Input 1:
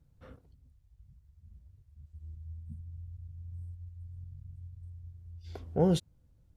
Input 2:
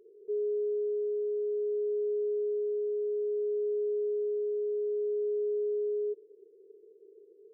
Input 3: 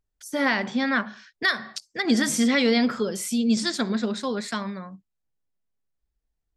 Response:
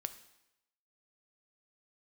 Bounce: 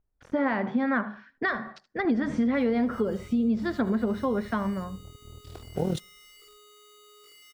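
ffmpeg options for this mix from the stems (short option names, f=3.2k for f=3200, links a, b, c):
-filter_complex "[0:a]tremolo=f=40:d=0.788,acrusher=bits=7:mix=0:aa=0.5,volume=2dB,asplit=2[a][b];[b]volume=-22.5dB[c];[1:a]bandreject=f=90.27:t=h:w=4,bandreject=f=180.54:t=h:w=4,bandreject=f=270.81:t=h:w=4,bandreject=f=361.08:t=h:w=4,bandreject=f=451.35:t=h:w=4,bandreject=f=541.62:t=h:w=4,bandreject=f=631.89:t=h:w=4,bandreject=f=722.16:t=h:w=4,bandreject=f=812.43:t=h:w=4,bandreject=f=902.7:t=h:w=4,bandreject=f=992.97:t=h:w=4,bandreject=f=1.08324k:t=h:w=4,bandreject=f=1.17351k:t=h:w=4,bandreject=f=1.26378k:t=h:w=4,bandreject=f=1.35405k:t=h:w=4,bandreject=f=1.44432k:t=h:w=4,bandreject=f=1.53459k:t=h:w=4,bandreject=f=1.62486k:t=h:w=4,bandreject=f=1.71513k:t=h:w=4,bandreject=f=1.8054k:t=h:w=4,bandreject=f=1.89567k:t=h:w=4,bandreject=f=1.98594k:t=h:w=4,bandreject=f=2.07621k:t=h:w=4,bandreject=f=2.16648k:t=h:w=4,bandreject=f=2.25675k:t=h:w=4,bandreject=f=2.34702k:t=h:w=4,bandreject=f=2.43729k:t=h:w=4,bandreject=f=2.52756k:t=h:w=4,bandreject=f=2.61783k:t=h:w=4,bandreject=f=2.7081k:t=h:w=4,bandreject=f=2.79837k:t=h:w=4,bandreject=f=2.88864k:t=h:w=4,bandreject=f=2.97891k:t=h:w=4,bandreject=f=3.06918k:t=h:w=4,bandreject=f=3.15945k:t=h:w=4,bandreject=f=3.24972k:t=h:w=4,bandreject=f=3.33999k:t=h:w=4,bandreject=f=3.43026k:t=h:w=4,bandreject=f=3.52053k:t=h:w=4,aeval=exprs='(mod(75*val(0)+1,2)-1)/75':c=same,adelay=2250,volume=-13dB[d];[2:a]lowpass=1.3k,volume=3dB,asplit=4[e][f][g][h];[f]volume=-23dB[i];[g]volume=-17dB[j];[h]apad=whole_len=431388[k];[d][k]sidechaincompress=threshold=-24dB:ratio=8:attack=6.8:release=101[l];[3:a]atrim=start_sample=2205[m];[c][i]amix=inputs=2:normalize=0[n];[n][m]afir=irnorm=-1:irlink=0[o];[j]aecho=0:1:76:1[p];[a][l][e][o][p]amix=inputs=5:normalize=0,acompressor=threshold=-22dB:ratio=6"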